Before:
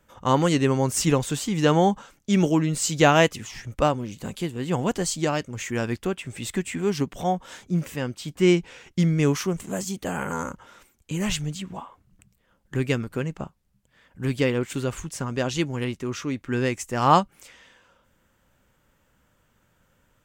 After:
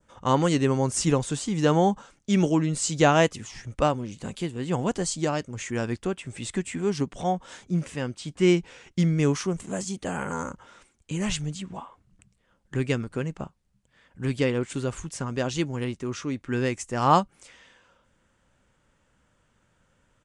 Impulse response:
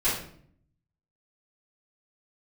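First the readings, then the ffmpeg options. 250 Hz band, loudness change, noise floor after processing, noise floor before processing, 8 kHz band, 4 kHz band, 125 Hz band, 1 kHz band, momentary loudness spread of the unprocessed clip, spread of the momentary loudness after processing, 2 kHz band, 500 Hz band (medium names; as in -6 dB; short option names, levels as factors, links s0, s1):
-1.5 dB, -2.0 dB, -68 dBFS, -67 dBFS, -2.0 dB, -3.0 dB, -1.5 dB, -2.0 dB, 12 LU, 12 LU, -3.0 dB, -1.5 dB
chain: -af "adynamicequalizer=threshold=0.00708:dfrequency=2500:dqfactor=1:tfrequency=2500:tqfactor=1:attack=5:release=100:ratio=0.375:range=2:mode=cutabove:tftype=bell,aresample=22050,aresample=44100,volume=0.841"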